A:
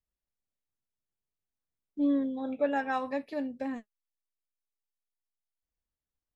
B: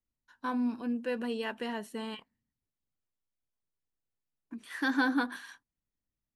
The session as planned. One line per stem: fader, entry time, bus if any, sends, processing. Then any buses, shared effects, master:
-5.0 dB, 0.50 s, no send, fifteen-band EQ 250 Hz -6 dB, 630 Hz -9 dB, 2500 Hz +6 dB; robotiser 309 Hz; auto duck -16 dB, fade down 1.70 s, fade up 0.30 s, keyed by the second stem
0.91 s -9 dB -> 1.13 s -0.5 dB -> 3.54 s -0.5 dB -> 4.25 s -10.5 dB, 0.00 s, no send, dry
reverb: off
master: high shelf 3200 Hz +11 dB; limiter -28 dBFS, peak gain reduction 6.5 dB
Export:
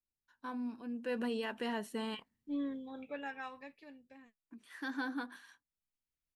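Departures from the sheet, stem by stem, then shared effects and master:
stem A: missing robotiser 309 Hz; master: missing high shelf 3200 Hz +11 dB

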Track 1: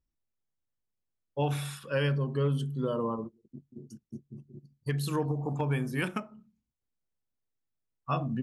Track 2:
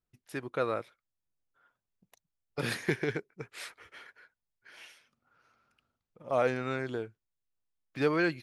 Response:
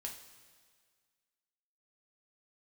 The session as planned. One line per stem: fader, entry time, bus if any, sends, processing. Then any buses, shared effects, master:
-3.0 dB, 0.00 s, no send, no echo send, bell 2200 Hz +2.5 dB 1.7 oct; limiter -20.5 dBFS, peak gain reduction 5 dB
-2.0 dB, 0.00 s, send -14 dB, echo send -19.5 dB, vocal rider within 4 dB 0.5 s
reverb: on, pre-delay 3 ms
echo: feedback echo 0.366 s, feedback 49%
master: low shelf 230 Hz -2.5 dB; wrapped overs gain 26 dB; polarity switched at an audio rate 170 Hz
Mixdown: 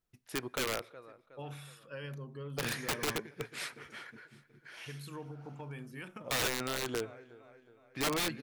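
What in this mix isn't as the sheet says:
stem 1 -3.0 dB -> -13.0 dB; master: missing polarity switched at an audio rate 170 Hz

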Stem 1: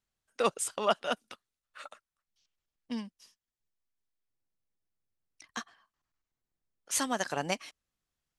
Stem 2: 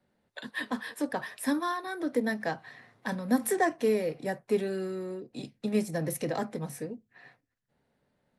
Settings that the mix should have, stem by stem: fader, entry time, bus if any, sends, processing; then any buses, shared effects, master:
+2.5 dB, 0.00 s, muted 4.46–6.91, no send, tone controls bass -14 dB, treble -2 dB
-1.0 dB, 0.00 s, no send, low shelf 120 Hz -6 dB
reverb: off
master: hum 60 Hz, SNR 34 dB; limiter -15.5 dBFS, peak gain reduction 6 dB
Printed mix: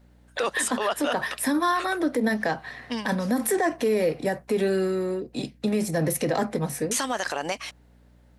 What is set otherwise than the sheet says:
stem 1 +2.5 dB -> +12.0 dB; stem 2 -1.0 dB -> +10.0 dB

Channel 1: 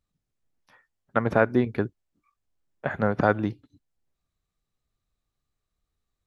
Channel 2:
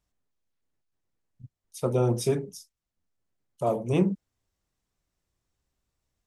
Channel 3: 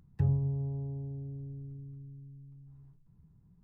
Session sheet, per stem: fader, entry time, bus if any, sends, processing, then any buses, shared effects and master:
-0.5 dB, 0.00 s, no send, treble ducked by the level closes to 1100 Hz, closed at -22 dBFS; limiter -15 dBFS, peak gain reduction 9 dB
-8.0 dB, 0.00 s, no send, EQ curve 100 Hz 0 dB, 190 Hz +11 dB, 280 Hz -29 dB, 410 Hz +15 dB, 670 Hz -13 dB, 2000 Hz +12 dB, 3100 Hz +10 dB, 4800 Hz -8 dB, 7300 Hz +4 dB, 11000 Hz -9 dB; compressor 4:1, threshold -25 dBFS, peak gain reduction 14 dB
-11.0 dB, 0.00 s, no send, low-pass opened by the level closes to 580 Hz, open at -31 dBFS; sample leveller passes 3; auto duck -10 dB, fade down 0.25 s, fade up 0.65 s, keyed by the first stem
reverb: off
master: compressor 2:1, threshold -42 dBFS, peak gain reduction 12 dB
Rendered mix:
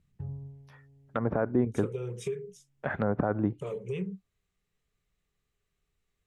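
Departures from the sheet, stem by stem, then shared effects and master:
stem 3: missing sample leveller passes 3; master: missing compressor 2:1, threshold -42 dBFS, peak gain reduction 12 dB

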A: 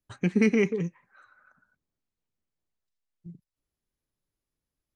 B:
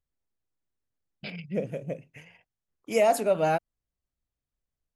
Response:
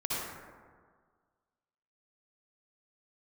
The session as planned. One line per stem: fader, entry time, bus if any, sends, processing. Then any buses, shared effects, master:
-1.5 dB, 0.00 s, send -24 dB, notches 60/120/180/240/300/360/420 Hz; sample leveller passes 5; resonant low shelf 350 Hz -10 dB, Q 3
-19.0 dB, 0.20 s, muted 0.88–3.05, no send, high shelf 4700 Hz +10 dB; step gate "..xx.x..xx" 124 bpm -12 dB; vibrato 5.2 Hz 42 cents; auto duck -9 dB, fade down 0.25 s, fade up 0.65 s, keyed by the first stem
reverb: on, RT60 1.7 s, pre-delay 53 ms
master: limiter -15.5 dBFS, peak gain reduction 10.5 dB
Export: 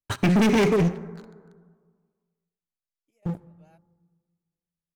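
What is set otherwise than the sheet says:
stem A: missing resonant low shelf 350 Hz -10 dB, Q 3; stem B -19.0 dB -> -31.0 dB

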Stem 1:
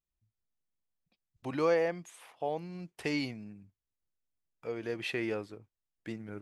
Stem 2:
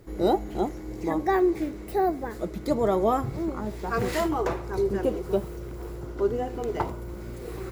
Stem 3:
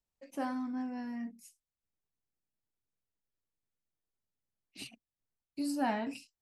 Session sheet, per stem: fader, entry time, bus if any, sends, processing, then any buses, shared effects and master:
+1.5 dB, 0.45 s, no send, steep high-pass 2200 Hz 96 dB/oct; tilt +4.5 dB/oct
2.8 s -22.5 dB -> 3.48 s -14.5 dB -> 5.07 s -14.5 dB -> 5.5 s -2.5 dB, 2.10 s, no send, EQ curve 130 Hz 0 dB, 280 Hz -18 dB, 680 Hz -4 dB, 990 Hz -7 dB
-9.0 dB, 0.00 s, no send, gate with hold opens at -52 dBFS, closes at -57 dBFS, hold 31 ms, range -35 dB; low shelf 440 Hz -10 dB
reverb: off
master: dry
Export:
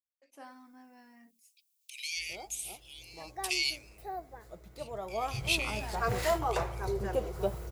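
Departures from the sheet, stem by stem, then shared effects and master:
stem 2 -22.5 dB -> -16.0 dB; master: extra tone controls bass -6 dB, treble +2 dB

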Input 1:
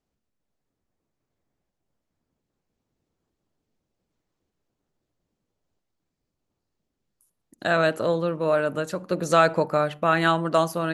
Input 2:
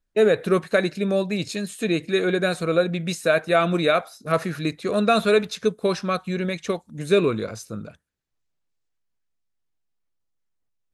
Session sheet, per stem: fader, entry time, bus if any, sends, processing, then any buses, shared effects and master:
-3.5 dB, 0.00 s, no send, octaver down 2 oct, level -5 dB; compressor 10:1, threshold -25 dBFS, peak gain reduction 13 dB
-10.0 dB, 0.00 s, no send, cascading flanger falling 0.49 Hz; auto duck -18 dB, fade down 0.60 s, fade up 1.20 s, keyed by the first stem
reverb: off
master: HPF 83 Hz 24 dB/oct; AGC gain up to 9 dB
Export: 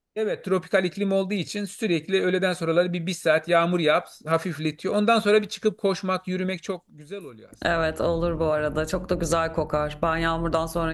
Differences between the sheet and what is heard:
stem 2: missing cascading flanger falling 0.49 Hz; master: missing HPF 83 Hz 24 dB/oct

